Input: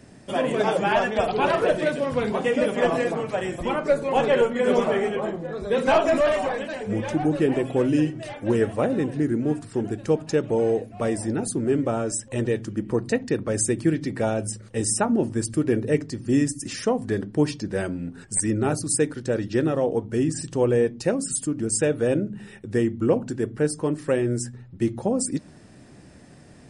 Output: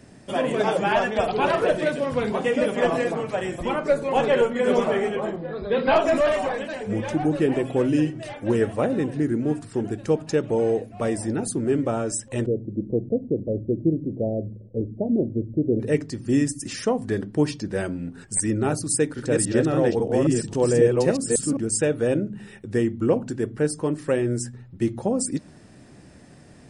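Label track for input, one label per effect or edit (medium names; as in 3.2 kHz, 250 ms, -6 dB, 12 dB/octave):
5.360000	5.960000	brick-wall FIR low-pass 5.1 kHz
12.460000	15.800000	steep low-pass 630 Hz 48 dB/octave
18.910000	21.570000	chunks repeated in reverse 272 ms, level -1 dB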